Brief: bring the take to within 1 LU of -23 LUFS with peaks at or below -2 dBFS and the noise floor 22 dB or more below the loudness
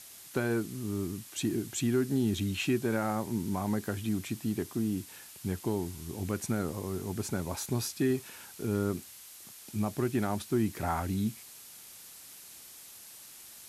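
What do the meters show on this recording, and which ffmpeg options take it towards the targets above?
noise floor -50 dBFS; noise floor target -55 dBFS; loudness -33.0 LUFS; peak level -17.0 dBFS; loudness target -23.0 LUFS
-> -af "afftdn=nr=6:nf=-50"
-af "volume=3.16"

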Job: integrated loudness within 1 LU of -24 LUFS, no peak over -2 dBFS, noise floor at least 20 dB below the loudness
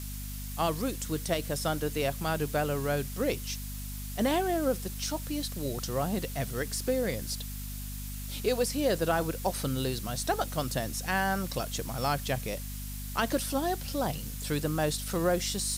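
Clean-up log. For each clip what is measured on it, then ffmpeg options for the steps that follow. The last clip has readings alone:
hum 50 Hz; highest harmonic 250 Hz; hum level -36 dBFS; noise floor -38 dBFS; noise floor target -52 dBFS; loudness -31.5 LUFS; peak level -15.0 dBFS; loudness target -24.0 LUFS
-> -af "bandreject=f=50:t=h:w=6,bandreject=f=100:t=h:w=6,bandreject=f=150:t=h:w=6,bandreject=f=200:t=h:w=6,bandreject=f=250:t=h:w=6"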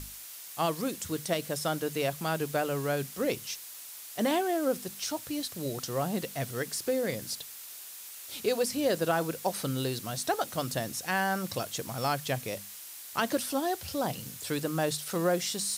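hum not found; noise floor -45 dBFS; noise floor target -52 dBFS
-> -af "afftdn=nr=7:nf=-45"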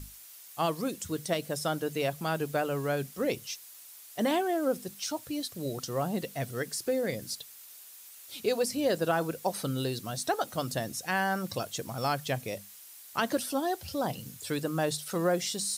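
noise floor -50 dBFS; noise floor target -52 dBFS
-> -af "afftdn=nr=6:nf=-50"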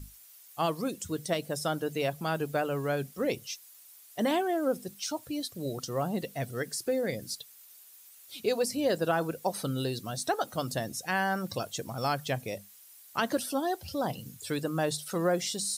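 noise floor -54 dBFS; loudness -32.0 LUFS; peak level -16.0 dBFS; loudness target -24.0 LUFS
-> -af "volume=2.51"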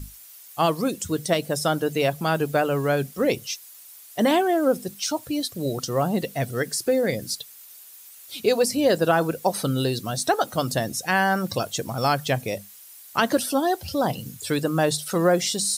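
loudness -24.0 LUFS; peak level -8.0 dBFS; noise floor -46 dBFS

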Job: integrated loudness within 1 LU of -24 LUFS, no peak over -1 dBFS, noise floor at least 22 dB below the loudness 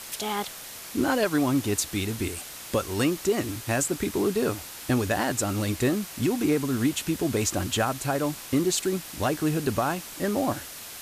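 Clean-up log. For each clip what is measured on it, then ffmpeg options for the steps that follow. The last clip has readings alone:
noise floor -41 dBFS; noise floor target -49 dBFS; loudness -27.0 LUFS; peak level -13.0 dBFS; loudness target -24.0 LUFS
-> -af "afftdn=nr=8:nf=-41"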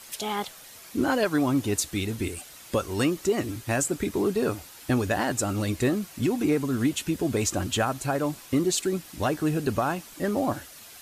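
noise floor -47 dBFS; noise floor target -49 dBFS
-> -af "afftdn=nr=6:nf=-47"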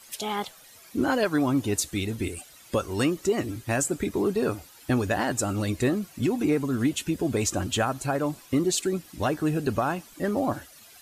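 noise floor -51 dBFS; loudness -27.0 LUFS; peak level -13.5 dBFS; loudness target -24.0 LUFS
-> -af "volume=1.41"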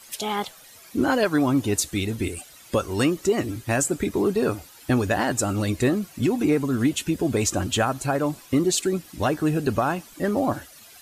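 loudness -24.0 LUFS; peak level -10.5 dBFS; noise floor -48 dBFS

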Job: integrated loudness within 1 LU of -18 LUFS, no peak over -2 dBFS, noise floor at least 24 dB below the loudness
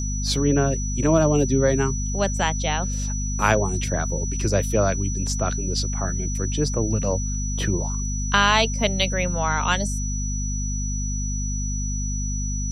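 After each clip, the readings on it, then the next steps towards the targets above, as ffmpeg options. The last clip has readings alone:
hum 50 Hz; highest harmonic 250 Hz; hum level -24 dBFS; steady tone 5.9 kHz; tone level -31 dBFS; loudness -23.0 LUFS; peak level -4.0 dBFS; loudness target -18.0 LUFS
-> -af "bandreject=f=50:t=h:w=6,bandreject=f=100:t=h:w=6,bandreject=f=150:t=h:w=6,bandreject=f=200:t=h:w=6,bandreject=f=250:t=h:w=6"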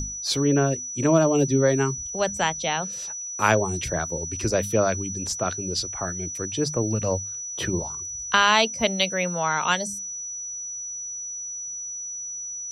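hum not found; steady tone 5.9 kHz; tone level -31 dBFS
-> -af "bandreject=f=5900:w=30"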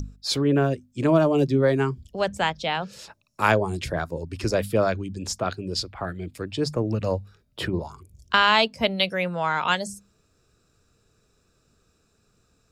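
steady tone not found; loudness -24.5 LUFS; peak level -5.0 dBFS; loudness target -18.0 LUFS
-> -af "volume=2.11,alimiter=limit=0.794:level=0:latency=1"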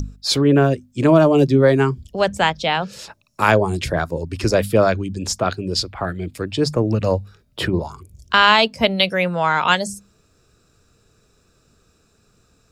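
loudness -18.0 LUFS; peak level -2.0 dBFS; noise floor -60 dBFS

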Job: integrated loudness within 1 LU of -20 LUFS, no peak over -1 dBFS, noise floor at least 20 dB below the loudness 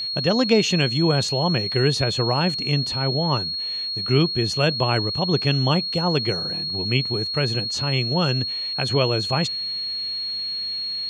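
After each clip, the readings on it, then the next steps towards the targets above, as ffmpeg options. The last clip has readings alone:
steady tone 4.3 kHz; tone level -25 dBFS; loudness -21.5 LUFS; peak level -5.0 dBFS; loudness target -20.0 LUFS
-> -af "bandreject=f=4300:w=30"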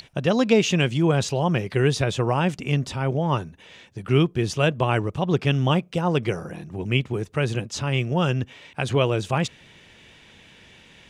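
steady tone not found; loudness -23.5 LUFS; peak level -5.5 dBFS; loudness target -20.0 LUFS
-> -af "volume=1.5"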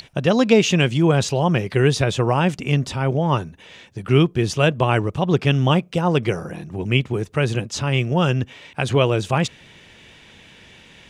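loudness -20.0 LUFS; peak level -2.0 dBFS; noise floor -48 dBFS

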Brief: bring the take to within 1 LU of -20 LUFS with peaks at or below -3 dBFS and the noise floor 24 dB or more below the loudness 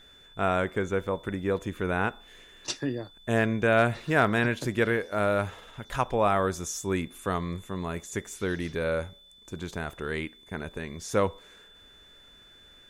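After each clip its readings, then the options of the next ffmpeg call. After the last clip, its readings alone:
steady tone 3.5 kHz; tone level -53 dBFS; loudness -29.0 LUFS; peak level -9.5 dBFS; loudness target -20.0 LUFS
-> -af "bandreject=f=3500:w=30"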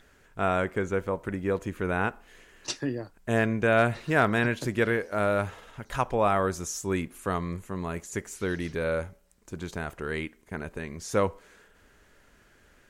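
steady tone not found; loudness -29.0 LUFS; peak level -9.5 dBFS; loudness target -20.0 LUFS
-> -af "volume=2.82,alimiter=limit=0.708:level=0:latency=1"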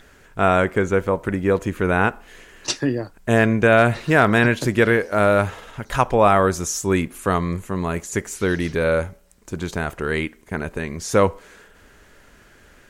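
loudness -20.0 LUFS; peak level -3.0 dBFS; noise floor -51 dBFS

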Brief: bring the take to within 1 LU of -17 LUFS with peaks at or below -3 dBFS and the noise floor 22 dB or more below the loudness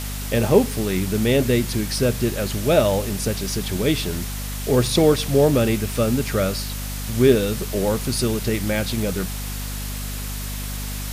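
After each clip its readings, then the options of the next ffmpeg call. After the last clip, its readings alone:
hum 50 Hz; highest harmonic 250 Hz; hum level -27 dBFS; noise floor -29 dBFS; noise floor target -44 dBFS; loudness -21.5 LUFS; peak level -3.0 dBFS; loudness target -17.0 LUFS
-> -af "bandreject=f=50:t=h:w=4,bandreject=f=100:t=h:w=4,bandreject=f=150:t=h:w=4,bandreject=f=200:t=h:w=4,bandreject=f=250:t=h:w=4"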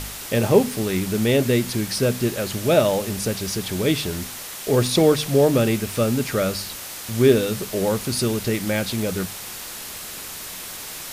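hum not found; noise floor -35 dBFS; noise floor target -44 dBFS
-> -af "afftdn=nr=9:nf=-35"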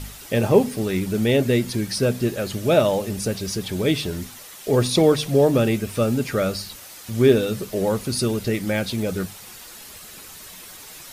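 noise floor -41 dBFS; noise floor target -44 dBFS
-> -af "afftdn=nr=6:nf=-41"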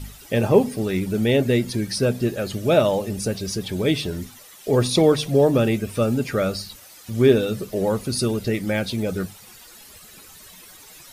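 noise floor -46 dBFS; loudness -21.5 LUFS; peak level -4.0 dBFS; loudness target -17.0 LUFS
-> -af "volume=1.68,alimiter=limit=0.708:level=0:latency=1"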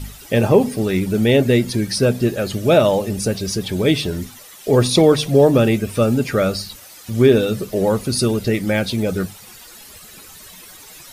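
loudness -17.5 LUFS; peak level -3.0 dBFS; noise floor -41 dBFS

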